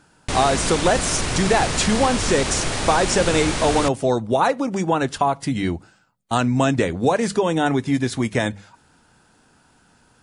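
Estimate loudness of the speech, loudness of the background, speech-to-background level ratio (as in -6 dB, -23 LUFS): -21.0 LUFS, -24.0 LUFS, 3.0 dB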